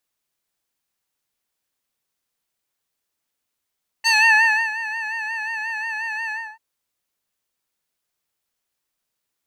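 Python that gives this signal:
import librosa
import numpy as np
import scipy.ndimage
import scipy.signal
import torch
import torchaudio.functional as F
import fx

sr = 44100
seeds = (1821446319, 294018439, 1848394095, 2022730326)

y = fx.sub_patch_vibrato(sr, seeds[0], note=81, wave='square', wave2='sine', interval_st=12, detune_cents=16, level2_db=-1, sub_db=-28, noise_db=-22.0, kind='bandpass', cutoff_hz=1200.0, q=1.9, env_oct=2.0, env_decay_s=0.27, env_sustain_pct=40, attack_ms=27.0, decay_s=0.65, sustain_db=-17, release_s=0.28, note_s=2.26, lfo_hz=5.6, vibrato_cents=62)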